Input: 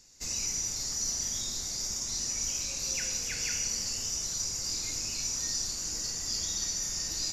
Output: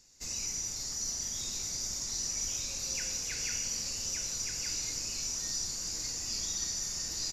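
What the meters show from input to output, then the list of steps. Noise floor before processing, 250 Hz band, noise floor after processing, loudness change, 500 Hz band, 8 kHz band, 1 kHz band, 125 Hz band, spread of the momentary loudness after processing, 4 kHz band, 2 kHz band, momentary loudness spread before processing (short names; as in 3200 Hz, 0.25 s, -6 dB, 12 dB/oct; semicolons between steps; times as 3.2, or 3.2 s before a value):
-36 dBFS, -2.5 dB, -39 dBFS, -2.5 dB, -2.5 dB, -2.5 dB, -2.5 dB, -2.5 dB, 2 LU, -2.5 dB, -2.5 dB, 2 LU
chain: echo 1.171 s -5 dB; gain -3.5 dB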